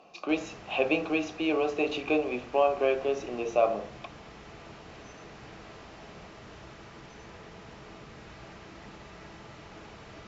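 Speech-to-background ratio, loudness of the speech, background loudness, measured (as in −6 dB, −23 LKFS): 19.0 dB, −28.5 LKFS, −47.5 LKFS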